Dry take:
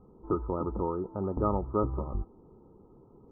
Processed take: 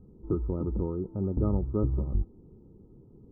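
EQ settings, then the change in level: EQ curve 140 Hz 0 dB, 360 Hz -6 dB, 1100 Hz -21 dB, 1900 Hz -15 dB; +6.0 dB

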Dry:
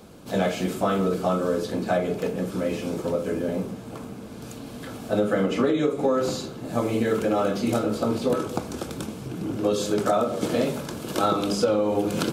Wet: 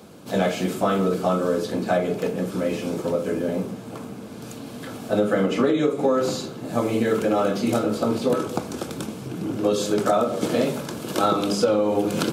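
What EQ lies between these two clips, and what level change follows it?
HPF 100 Hz; +2.0 dB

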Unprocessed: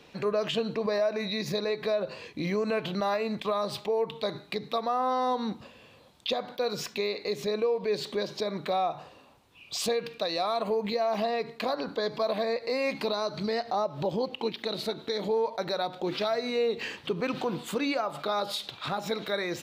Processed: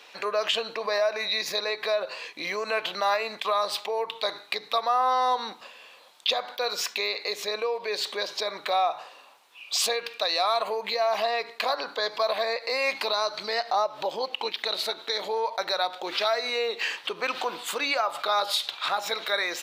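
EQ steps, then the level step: HPF 800 Hz 12 dB/oct; +7.5 dB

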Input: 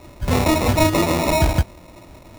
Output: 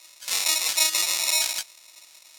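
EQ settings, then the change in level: band-pass 5300 Hz, Q 0.84; tilt +4 dB/oct; -1.5 dB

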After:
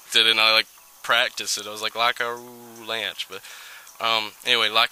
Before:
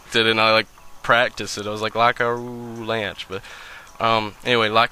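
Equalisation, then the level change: RIAA curve recording; dynamic EQ 3200 Hz, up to +5 dB, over -28 dBFS, Q 1.3; -6.0 dB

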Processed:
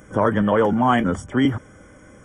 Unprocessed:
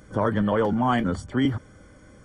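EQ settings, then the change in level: Butterworth band-stop 4200 Hz, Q 2; low shelf 130 Hz -6.5 dB; +5.5 dB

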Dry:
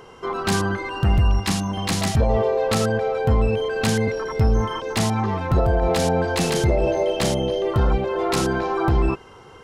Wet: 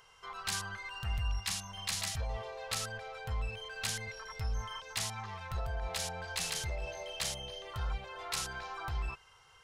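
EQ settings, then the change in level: passive tone stack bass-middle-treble 10-0-10; low shelf 330 Hz -2.5 dB; -6.5 dB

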